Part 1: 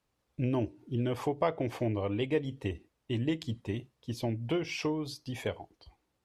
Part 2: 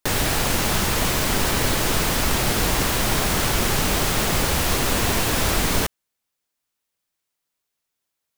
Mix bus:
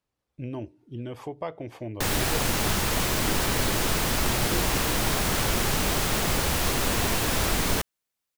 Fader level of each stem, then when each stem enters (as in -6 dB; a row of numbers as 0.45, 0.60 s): -4.5, -4.0 dB; 0.00, 1.95 s